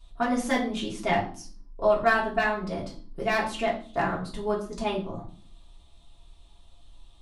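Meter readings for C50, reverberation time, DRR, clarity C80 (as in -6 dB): 10.0 dB, 0.45 s, -4.5 dB, 14.5 dB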